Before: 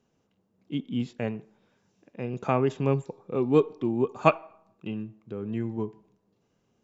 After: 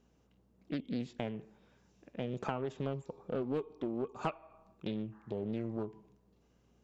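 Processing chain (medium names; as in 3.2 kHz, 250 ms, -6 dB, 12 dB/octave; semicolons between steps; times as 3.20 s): spectral replace 5.15–5.43 s, 720–2100 Hz after; compression 6:1, threshold -33 dBFS, peak gain reduction 18.5 dB; hum 60 Hz, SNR 33 dB; loudspeaker Doppler distortion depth 0.5 ms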